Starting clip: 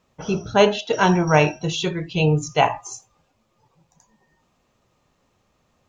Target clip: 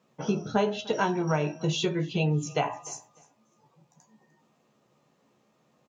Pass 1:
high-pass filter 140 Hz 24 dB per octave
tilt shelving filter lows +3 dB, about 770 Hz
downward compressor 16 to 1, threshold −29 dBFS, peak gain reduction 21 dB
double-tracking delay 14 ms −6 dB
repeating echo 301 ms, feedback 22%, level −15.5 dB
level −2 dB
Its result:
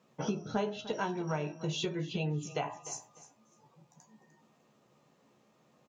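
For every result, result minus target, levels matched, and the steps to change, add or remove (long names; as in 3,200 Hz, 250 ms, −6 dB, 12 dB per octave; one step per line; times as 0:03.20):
downward compressor: peak gain reduction +8 dB; echo-to-direct +6.5 dB
change: downward compressor 16 to 1, threshold −20.5 dBFS, peak gain reduction 13 dB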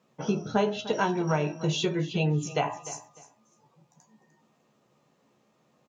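echo-to-direct +6.5 dB
change: repeating echo 301 ms, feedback 22%, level −22 dB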